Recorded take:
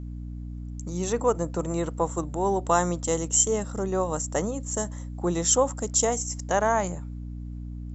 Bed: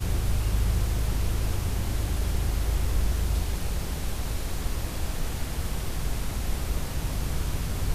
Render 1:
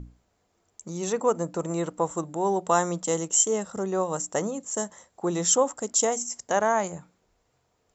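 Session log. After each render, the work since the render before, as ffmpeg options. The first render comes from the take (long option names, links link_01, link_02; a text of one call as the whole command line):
ffmpeg -i in.wav -af "bandreject=frequency=60:width_type=h:width=6,bandreject=frequency=120:width_type=h:width=6,bandreject=frequency=180:width_type=h:width=6,bandreject=frequency=240:width_type=h:width=6,bandreject=frequency=300:width_type=h:width=6" out.wav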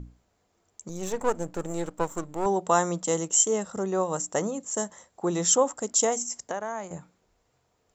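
ffmpeg -i in.wav -filter_complex "[0:a]asettb=1/sr,asplit=3[link_01][link_02][link_03];[link_01]atrim=end=0.894[link_04];[link_02]atrim=start=0.89:end=2.46,asetpts=PTS-STARTPTS,afade=type=in:duration=0.004:curve=qsin,afade=type=out:start_time=1.566:duration=0.004:curve=qsin,aeval=exprs='if(lt(val(0),0),0.251*val(0),val(0))':channel_layout=same[link_05];[link_03]atrim=start=2.456[link_06];[link_04][link_05]acrossfade=duration=0.004:curve1=hsin:curve2=qsin[link_07];[link_07][link_06]acrossfade=duration=0.004:curve1=qsin:curve2=hsin,asettb=1/sr,asplit=3[link_08][link_09][link_10];[link_08]atrim=end=6.444[link_11];[link_09]atrim=start=6.44:end=6.91,asetpts=PTS-STARTPTS,afade=type=in:duration=0.004:curve=qsin,afade=type=out:start_time=0.466:duration=0.004:curve=qsin,acrossover=split=330|2600[link_12][link_13][link_14];[link_12]acompressor=threshold=-45dB:ratio=4[link_15];[link_13]acompressor=threshold=-32dB:ratio=4[link_16];[link_14]acompressor=threshold=-50dB:ratio=4[link_17];[link_15][link_16][link_17]amix=inputs=3:normalize=0[link_18];[link_10]atrim=start=6.906[link_19];[link_11][link_18]acrossfade=duration=0.004:curve1=hsin:curve2=qsin[link_20];[link_20][link_19]acrossfade=duration=0.004:curve1=qsin:curve2=hsin" out.wav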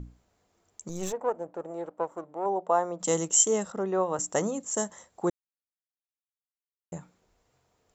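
ffmpeg -i in.wav -filter_complex "[0:a]asplit=3[link_01][link_02][link_03];[link_01]afade=type=out:start_time=1.11:duration=0.02[link_04];[link_02]bandpass=frequency=650:width_type=q:width=1.3,afade=type=in:start_time=1.11:duration=0.02,afade=type=out:start_time=2.99:duration=0.02[link_05];[link_03]afade=type=in:start_time=2.99:duration=0.02[link_06];[link_04][link_05][link_06]amix=inputs=3:normalize=0,asettb=1/sr,asplit=3[link_07][link_08][link_09];[link_07]atrim=end=3.724[link_10];[link_08]atrim=start=3.72:end=4.19,asetpts=PTS-STARTPTS,afade=type=in:duration=0.004:curve=qsin,afade=type=out:start_time=0.466:duration=0.004:curve=qsin,highpass=200,lowpass=2900[link_11];[link_09]atrim=start=4.186[link_12];[link_10][link_11]acrossfade=duration=0.004:curve1=hsin:curve2=qsin[link_13];[link_13][link_12]acrossfade=duration=0.004:curve1=qsin:curve2=hsin,asplit=3[link_14][link_15][link_16];[link_14]atrim=end=5.3,asetpts=PTS-STARTPTS,afade=type=out:start_time=5.296:duration=0.004:curve=hsin[link_17];[link_15]atrim=start=5.3:end=6.92,asetpts=PTS-STARTPTS,volume=0[link_18];[link_16]atrim=start=6.92,asetpts=PTS-STARTPTS,afade=type=in:duration=0.004:curve=hsin[link_19];[link_17][link_18][link_19]concat=n=3:v=0:a=1" out.wav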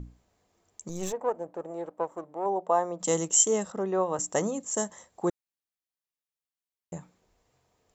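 ffmpeg -i in.wav -af "bandreject=frequency=1400:width=13" out.wav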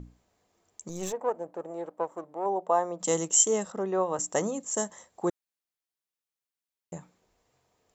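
ffmpeg -i in.wav -af "lowshelf=frequency=130:gain=-5.5" out.wav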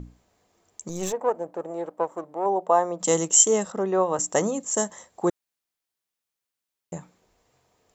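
ffmpeg -i in.wav -af "volume=5dB" out.wav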